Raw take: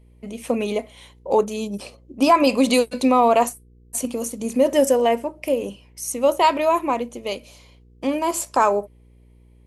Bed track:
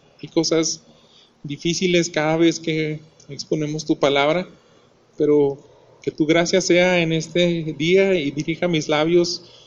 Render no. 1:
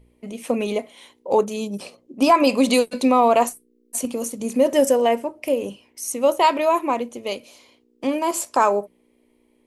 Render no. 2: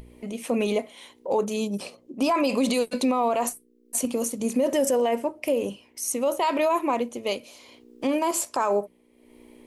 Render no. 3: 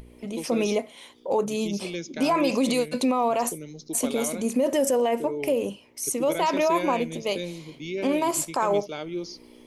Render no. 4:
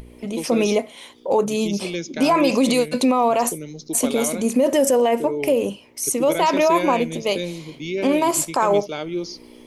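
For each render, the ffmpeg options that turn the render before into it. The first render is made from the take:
-af "bandreject=f=60:t=h:w=4,bandreject=f=120:t=h:w=4,bandreject=f=180:t=h:w=4"
-af "acompressor=mode=upward:threshold=0.0141:ratio=2.5,alimiter=limit=0.178:level=0:latency=1:release=35"
-filter_complex "[1:a]volume=0.158[s0];[0:a][s0]amix=inputs=2:normalize=0"
-af "volume=1.88"

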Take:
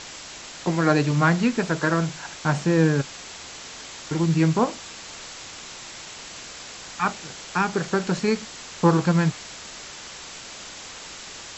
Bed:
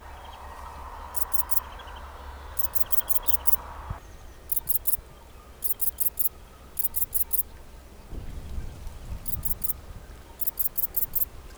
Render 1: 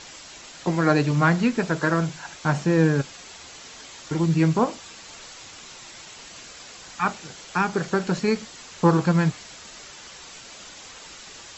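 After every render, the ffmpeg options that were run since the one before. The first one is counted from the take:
-af "afftdn=nr=6:nf=-40"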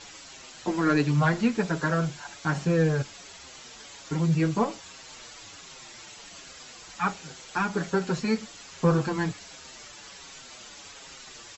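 -filter_complex "[0:a]asoftclip=type=tanh:threshold=0.398,asplit=2[s0][s1];[s1]adelay=6.5,afreqshift=-1.3[s2];[s0][s2]amix=inputs=2:normalize=1"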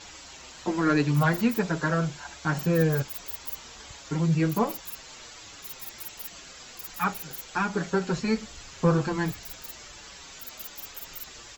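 -filter_complex "[1:a]volume=0.168[s0];[0:a][s0]amix=inputs=2:normalize=0"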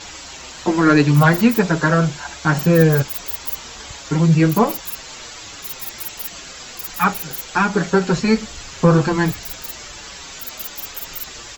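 -af "volume=3.16,alimiter=limit=0.794:level=0:latency=1"

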